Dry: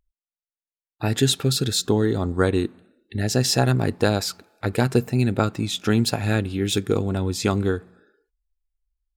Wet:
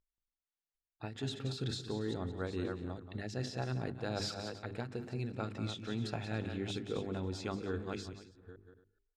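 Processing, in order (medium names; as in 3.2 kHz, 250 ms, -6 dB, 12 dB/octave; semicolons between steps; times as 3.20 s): chunks repeated in reverse 428 ms, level -13 dB; de-esser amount 45%; low-pass 5 kHz 12 dB/octave; hum notches 50/100/150/200/250/300/350/400 Hz; reverse; compression 10:1, threshold -31 dBFS, peak gain reduction 17.5 dB; reverse; multi-tap echo 180/281 ms -11/-17.5 dB; endings held to a fixed fall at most 110 dB/s; trim -3 dB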